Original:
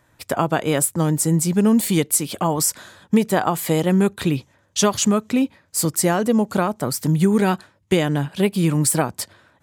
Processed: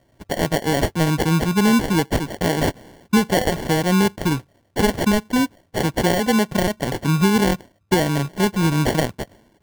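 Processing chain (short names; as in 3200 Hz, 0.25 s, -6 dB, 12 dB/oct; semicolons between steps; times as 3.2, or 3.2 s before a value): sample-and-hold 35×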